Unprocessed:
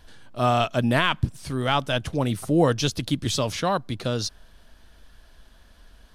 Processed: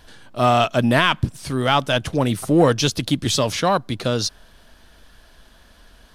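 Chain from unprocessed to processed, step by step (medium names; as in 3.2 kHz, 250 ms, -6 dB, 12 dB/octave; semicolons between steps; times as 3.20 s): bass shelf 100 Hz -6.5 dB; in parallel at -8 dB: hard clipper -19 dBFS, distortion -11 dB; on the sum: trim +3 dB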